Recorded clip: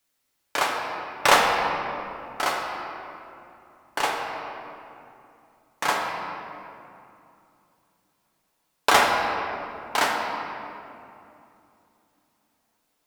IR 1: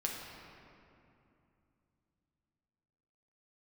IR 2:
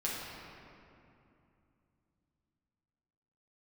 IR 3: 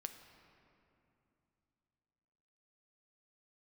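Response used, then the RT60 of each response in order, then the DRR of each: 1; 2.7, 2.7, 2.9 seconds; −2.0, −7.0, 6.5 decibels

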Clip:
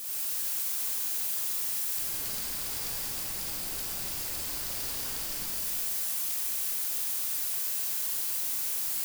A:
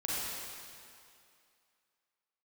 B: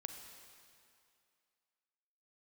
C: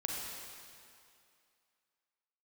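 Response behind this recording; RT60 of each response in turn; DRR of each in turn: A; 2.4, 2.4, 2.4 seconds; −7.5, 5.0, −2.0 decibels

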